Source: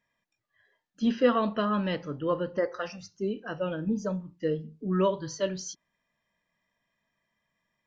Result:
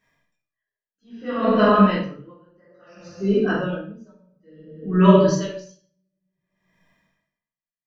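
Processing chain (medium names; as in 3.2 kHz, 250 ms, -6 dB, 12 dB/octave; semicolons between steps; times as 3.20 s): 1.35–3.02 s: band-stop 3.4 kHz, Q 5.3; simulated room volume 370 m³, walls mixed, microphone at 3.5 m; logarithmic tremolo 0.58 Hz, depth 39 dB; trim +4 dB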